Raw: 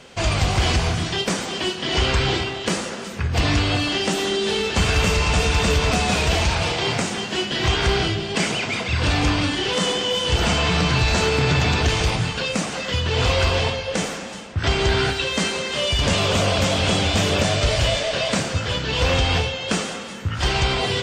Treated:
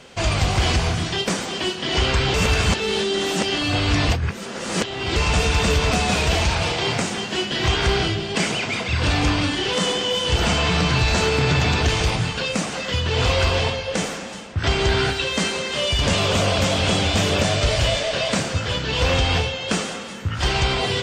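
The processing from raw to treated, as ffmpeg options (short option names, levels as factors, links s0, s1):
-filter_complex "[0:a]asplit=3[s0][s1][s2];[s0]atrim=end=2.342[s3];[s1]atrim=start=2.338:end=5.162,asetpts=PTS-STARTPTS,areverse[s4];[s2]atrim=start=5.158[s5];[s3][s4]acrossfade=d=0.004:c1=hsin:c2=hsin[s6];[s6][s5]acrossfade=d=0.004:c1=hsin:c2=hsin"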